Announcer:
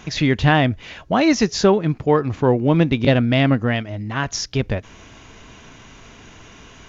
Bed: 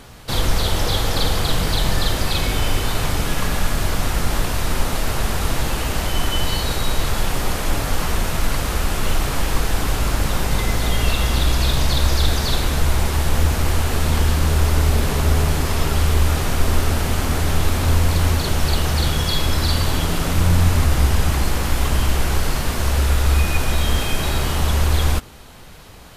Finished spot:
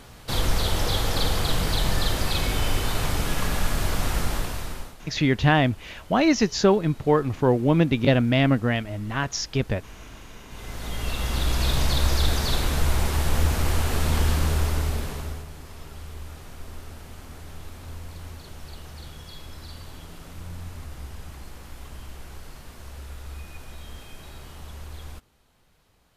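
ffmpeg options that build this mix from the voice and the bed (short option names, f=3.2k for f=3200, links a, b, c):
-filter_complex "[0:a]adelay=5000,volume=-3.5dB[a];[1:a]volume=17dB,afade=t=out:st=4.17:d=0.79:silence=0.0841395,afade=t=in:st=10.48:d=1.27:silence=0.0841395,afade=t=out:st=14.34:d=1.11:silence=0.133352[b];[a][b]amix=inputs=2:normalize=0"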